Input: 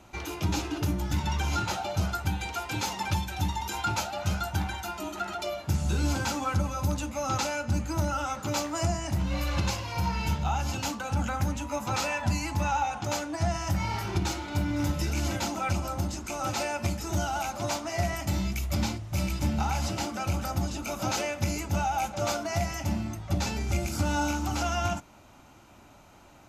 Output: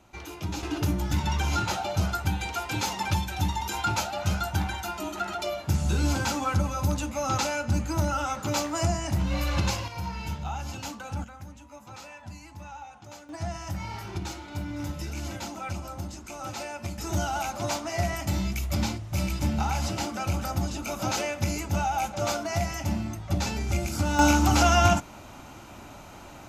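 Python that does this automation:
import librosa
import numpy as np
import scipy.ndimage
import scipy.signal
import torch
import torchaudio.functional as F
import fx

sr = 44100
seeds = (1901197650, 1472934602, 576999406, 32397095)

y = fx.gain(x, sr, db=fx.steps((0.0, -4.5), (0.63, 2.0), (9.88, -5.0), (11.24, -15.0), (13.29, -5.5), (16.98, 1.0), (24.19, 9.0)))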